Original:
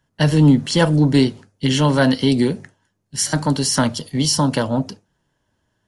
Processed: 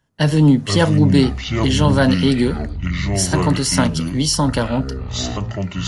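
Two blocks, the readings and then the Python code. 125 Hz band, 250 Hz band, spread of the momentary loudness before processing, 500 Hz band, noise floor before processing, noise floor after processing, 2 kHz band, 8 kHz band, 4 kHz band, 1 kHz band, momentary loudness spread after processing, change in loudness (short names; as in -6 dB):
+2.0 dB, +1.0 dB, 9 LU, +0.5 dB, -71 dBFS, -30 dBFS, +1.5 dB, +0.5 dB, +0.5 dB, +1.0 dB, 10 LU, +0.5 dB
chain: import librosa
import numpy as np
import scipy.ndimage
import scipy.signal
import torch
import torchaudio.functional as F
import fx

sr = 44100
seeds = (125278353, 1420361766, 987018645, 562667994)

y = fx.echo_pitch(x, sr, ms=378, semitones=-7, count=3, db_per_echo=-6.0)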